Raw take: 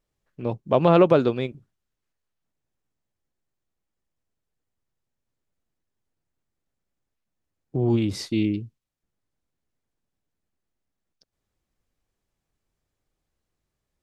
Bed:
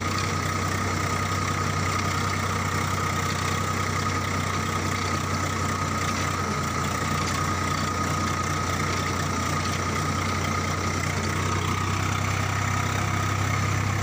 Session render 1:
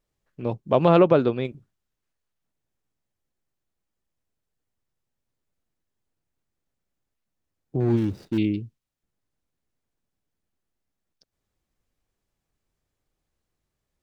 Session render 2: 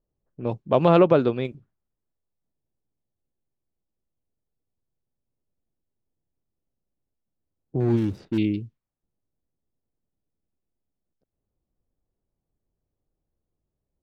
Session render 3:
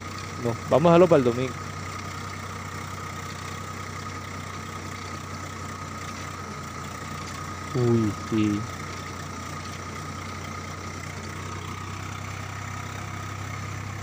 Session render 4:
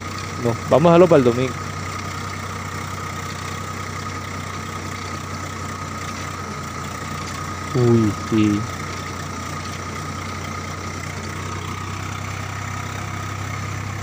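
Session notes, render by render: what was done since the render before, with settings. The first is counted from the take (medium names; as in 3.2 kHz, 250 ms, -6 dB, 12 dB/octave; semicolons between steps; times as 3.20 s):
0.99–1.45 s: distance through air 130 m; 7.80–8.38 s: median filter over 41 samples
level-controlled noise filter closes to 660 Hz, open at -22.5 dBFS
add bed -9 dB
trim +6.5 dB; peak limiter -1 dBFS, peak gain reduction 3 dB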